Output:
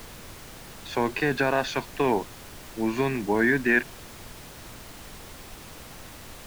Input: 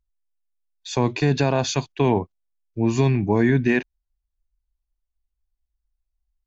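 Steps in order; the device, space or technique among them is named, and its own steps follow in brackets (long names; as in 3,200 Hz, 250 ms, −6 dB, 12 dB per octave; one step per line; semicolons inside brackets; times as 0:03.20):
horn gramophone (band-pass filter 250–3,700 Hz; parametric band 1,600 Hz +10 dB; tape wow and flutter; pink noise bed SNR 14 dB)
level −3 dB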